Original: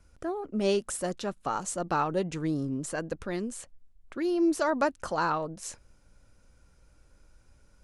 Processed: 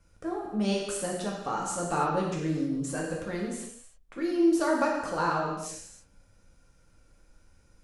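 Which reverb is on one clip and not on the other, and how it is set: gated-style reverb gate 350 ms falling, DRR -3 dB; trim -4 dB

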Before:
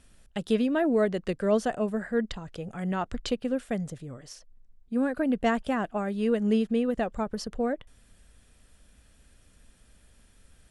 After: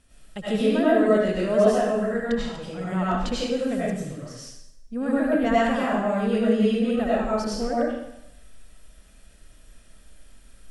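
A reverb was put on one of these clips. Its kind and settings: algorithmic reverb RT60 0.81 s, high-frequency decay 1×, pre-delay 55 ms, DRR -8 dB; trim -3 dB

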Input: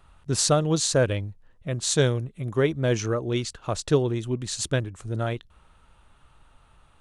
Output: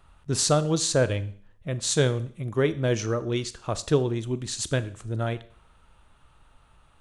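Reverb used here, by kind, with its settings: Schroeder reverb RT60 0.53 s, combs from 27 ms, DRR 14.5 dB; trim -1 dB

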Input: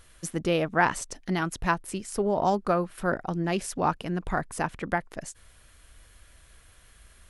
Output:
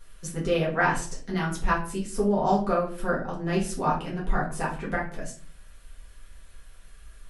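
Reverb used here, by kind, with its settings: simulated room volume 32 m³, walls mixed, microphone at 1.1 m; trim -7 dB

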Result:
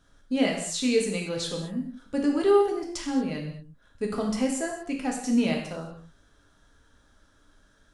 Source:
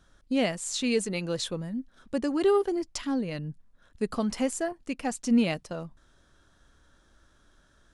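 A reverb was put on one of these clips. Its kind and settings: gated-style reverb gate 260 ms falling, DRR -0.5 dB; trim -2 dB

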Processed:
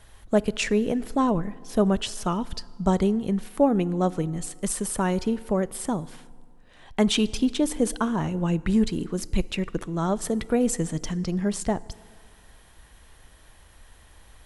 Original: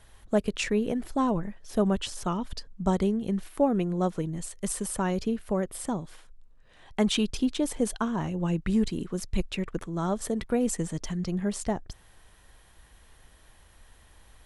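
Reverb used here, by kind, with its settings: FDN reverb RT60 2 s, low-frequency decay 1×, high-frequency decay 0.7×, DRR 19 dB; trim +3.5 dB

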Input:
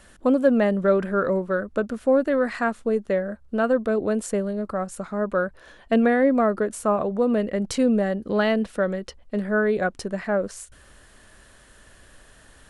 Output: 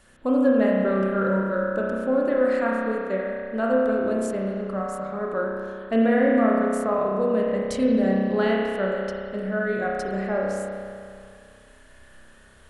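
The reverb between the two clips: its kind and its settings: spring tank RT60 2.3 s, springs 31 ms, chirp 60 ms, DRR -3.5 dB; trim -5.5 dB

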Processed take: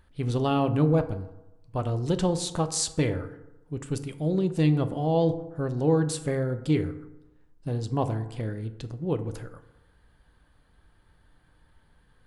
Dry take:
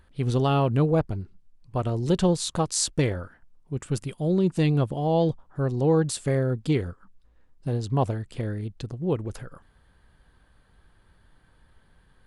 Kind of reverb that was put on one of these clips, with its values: FDN reverb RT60 0.97 s, low-frequency decay 0.95×, high-frequency decay 0.45×, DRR 9 dB; trim -2.5 dB

